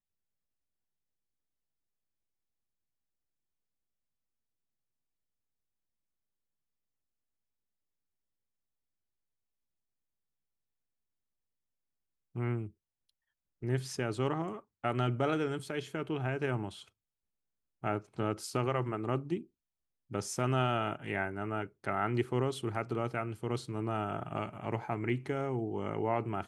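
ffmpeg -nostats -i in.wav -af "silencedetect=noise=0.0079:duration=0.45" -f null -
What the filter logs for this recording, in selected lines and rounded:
silence_start: 0.00
silence_end: 12.35 | silence_duration: 12.35
silence_start: 12.68
silence_end: 13.62 | silence_duration: 0.95
silence_start: 16.82
silence_end: 17.84 | silence_duration: 1.02
silence_start: 19.42
silence_end: 20.11 | silence_duration: 0.69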